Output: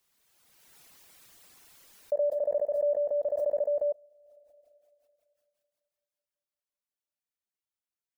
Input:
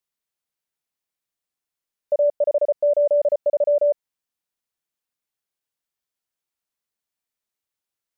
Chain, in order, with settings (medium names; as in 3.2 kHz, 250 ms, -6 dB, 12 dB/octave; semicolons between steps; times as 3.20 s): spring tank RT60 2.8 s, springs 34/55 ms, chirp 30 ms, DRR 16 dB; reverb removal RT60 0.85 s; swell ahead of each attack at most 24 dB/s; trim -8 dB